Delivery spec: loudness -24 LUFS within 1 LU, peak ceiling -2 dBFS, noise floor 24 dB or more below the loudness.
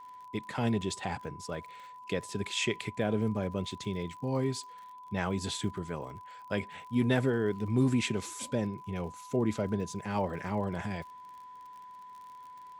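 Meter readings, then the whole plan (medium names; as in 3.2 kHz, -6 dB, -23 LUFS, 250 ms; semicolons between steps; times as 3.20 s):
tick rate 51 per s; steady tone 1 kHz; tone level -46 dBFS; loudness -33.0 LUFS; peak level -14.0 dBFS; loudness target -24.0 LUFS
-> de-click; band-stop 1 kHz, Q 30; trim +9 dB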